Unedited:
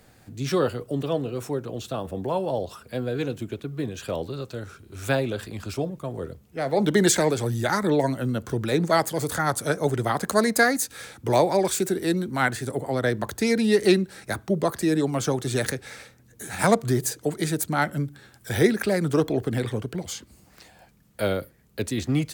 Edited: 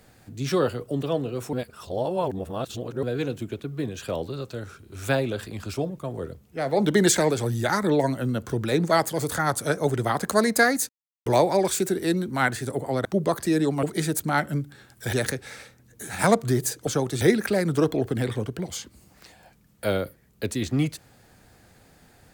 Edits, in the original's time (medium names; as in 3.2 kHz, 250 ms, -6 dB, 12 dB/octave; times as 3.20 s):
1.53–3.03 s: reverse
10.89–11.26 s: mute
13.05–14.41 s: delete
15.19–15.53 s: swap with 17.27–18.57 s